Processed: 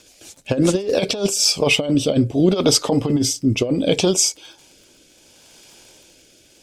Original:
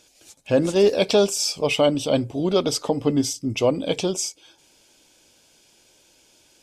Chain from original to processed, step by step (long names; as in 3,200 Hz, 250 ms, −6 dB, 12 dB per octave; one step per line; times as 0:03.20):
surface crackle 49 per second −45 dBFS
compressor whose output falls as the input rises −21 dBFS, ratio −0.5
rotating-speaker cabinet horn 7 Hz, later 0.7 Hz, at 0:00.73
level +7.5 dB